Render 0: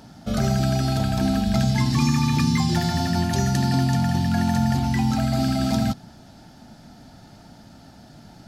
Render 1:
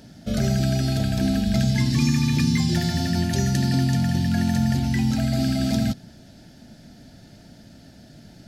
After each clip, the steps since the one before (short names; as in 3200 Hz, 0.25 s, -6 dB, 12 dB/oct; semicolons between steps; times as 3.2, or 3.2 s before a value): band shelf 1000 Hz -10.5 dB 1 oct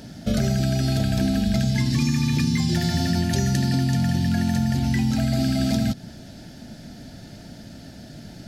compressor 4:1, threshold -25 dBFS, peak gain reduction 8.5 dB; gain +6 dB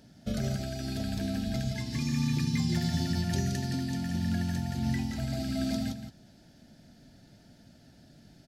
echo 0.171 s -6.5 dB; upward expander 1.5:1, over -33 dBFS; gain -8 dB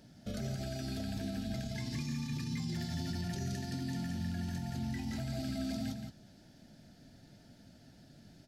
limiter -28 dBFS, peak gain reduction 10.5 dB; flange 1.5 Hz, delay 5.3 ms, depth 6.5 ms, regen -67%; gain +2.5 dB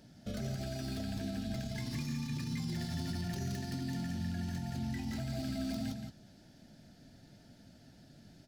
tracing distortion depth 0.088 ms